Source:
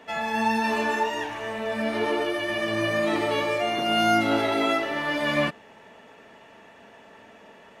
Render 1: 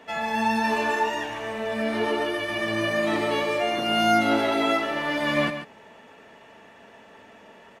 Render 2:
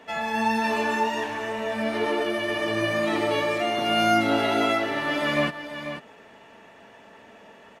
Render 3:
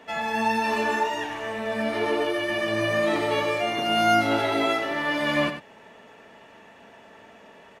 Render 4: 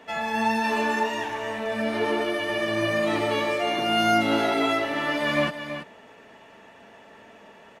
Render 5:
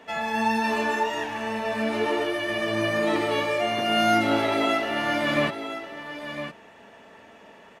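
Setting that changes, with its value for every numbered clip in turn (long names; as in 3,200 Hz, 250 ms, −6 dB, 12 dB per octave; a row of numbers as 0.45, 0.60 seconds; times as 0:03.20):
single-tap delay, delay time: 140, 491, 92, 330, 1,009 milliseconds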